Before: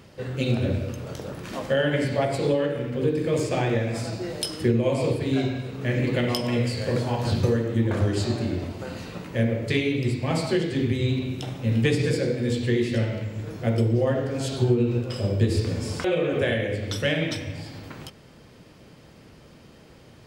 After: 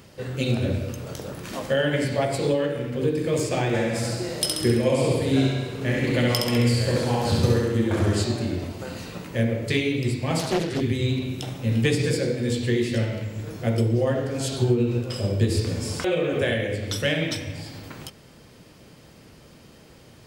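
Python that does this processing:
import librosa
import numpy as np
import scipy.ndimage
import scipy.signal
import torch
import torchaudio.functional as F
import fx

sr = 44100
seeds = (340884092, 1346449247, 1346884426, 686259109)

y = fx.echo_feedback(x, sr, ms=67, feedback_pct=59, wet_db=-3, at=(3.73, 8.22), fade=0.02)
y = fx.doppler_dist(y, sr, depth_ms=0.7, at=(10.39, 10.81))
y = fx.high_shelf(y, sr, hz=5900.0, db=8.0)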